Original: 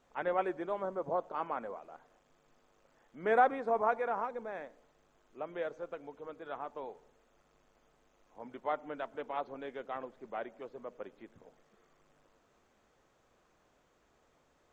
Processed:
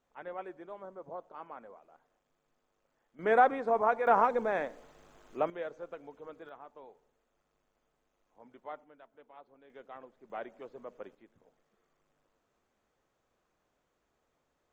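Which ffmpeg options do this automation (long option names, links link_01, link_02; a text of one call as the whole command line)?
ffmpeg -i in.wav -af "asetnsamples=nb_out_samples=441:pad=0,asendcmd='3.19 volume volume 2.5dB;4.07 volume volume 10.5dB;5.5 volume volume -1.5dB;6.49 volume volume -9dB;8.84 volume volume -17dB;9.7 volume volume -8dB;10.3 volume volume -1dB;11.15 volume volume -8dB',volume=-9.5dB" out.wav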